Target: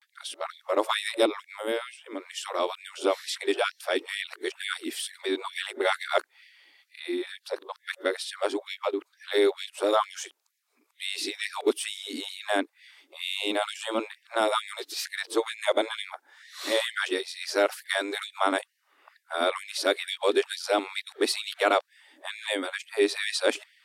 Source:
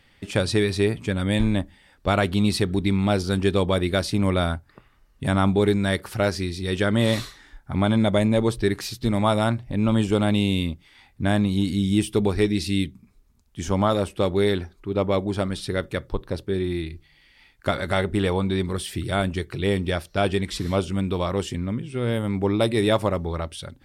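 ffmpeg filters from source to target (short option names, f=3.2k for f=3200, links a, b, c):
-af "areverse,afftfilt=real='re*gte(b*sr/1024,250*pow(1700/250,0.5+0.5*sin(2*PI*2.2*pts/sr)))':imag='im*gte(b*sr/1024,250*pow(1700/250,0.5+0.5*sin(2*PI*2.2*pts/sr)))':win_size=1024:overlap=0.75"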